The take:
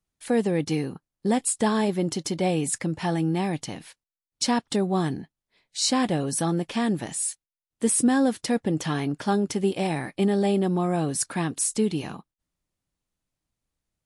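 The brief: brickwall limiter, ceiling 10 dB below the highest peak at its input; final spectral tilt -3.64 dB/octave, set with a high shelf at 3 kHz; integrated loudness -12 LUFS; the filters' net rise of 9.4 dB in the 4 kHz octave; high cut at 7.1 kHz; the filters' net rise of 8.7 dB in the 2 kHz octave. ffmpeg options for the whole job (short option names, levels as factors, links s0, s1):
-af "lowpass=7100,equalizer=f=2000:t=o:g=7,highshelf=f=3000:g=7.5,equalizer=f=4000:t=o:g=4.5,volume=4.47,alimiter=limit=0.841:level=0:latency=1"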